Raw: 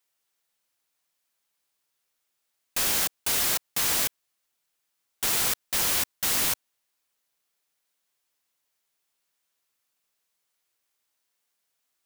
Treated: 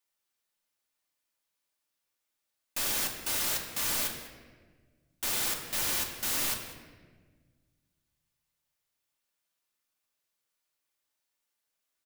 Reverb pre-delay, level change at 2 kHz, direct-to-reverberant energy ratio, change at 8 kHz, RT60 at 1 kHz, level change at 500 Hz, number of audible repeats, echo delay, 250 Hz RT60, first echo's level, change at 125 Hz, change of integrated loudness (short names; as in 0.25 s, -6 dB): 3 ms, -4.5 dB, 1.5 dB, -5.5 dB, 1.2 s, -4.5 dB, 1, 0.195 s, 2.2 s, -17.5 dB, -4.0 dB, -5.5 dB